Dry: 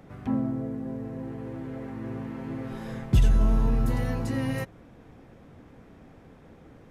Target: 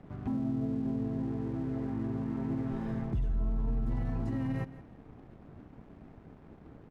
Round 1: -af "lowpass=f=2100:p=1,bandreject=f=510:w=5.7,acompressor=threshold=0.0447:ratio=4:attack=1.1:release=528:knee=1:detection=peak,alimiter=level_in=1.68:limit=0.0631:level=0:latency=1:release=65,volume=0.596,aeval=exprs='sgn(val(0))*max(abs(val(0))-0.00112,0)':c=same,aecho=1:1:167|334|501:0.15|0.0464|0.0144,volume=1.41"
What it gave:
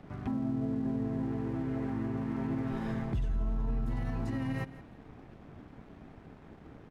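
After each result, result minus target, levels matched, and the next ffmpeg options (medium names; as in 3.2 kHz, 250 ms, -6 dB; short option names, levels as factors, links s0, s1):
compression: peak gain reduction +11.5 dB; 2 kHz band +5.5 dB
-af "lowpass=f=2100:p=1,bandreject=f=510:w=5.7,alimiter=level_in=1.68:limit=0.0631:level=0:latency=1:release=65,volume=0.596,aeval=exprs='sgn(val(0))*max(abs(val(0))-0.00112,0)':c=same,aecho=1:1:167|334|501:0.15|0.0464|0.0144,volume=1.41"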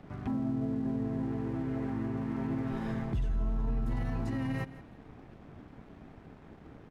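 2 kHz band +5.5 dB
-af "lowpass=f=680:p=1,bandreject=f=510:w=5.7,alimiter=level_in=1.68:limit=0.0631:level=0:latency=1:release=65,volume=0.596,aeval=exprs='sgn(val(0))*max(abs(val(0))-0.00112,0)':c=same,aecho=1:1:167|334|501:0.15|0.0464|0.0144,volume=1.41"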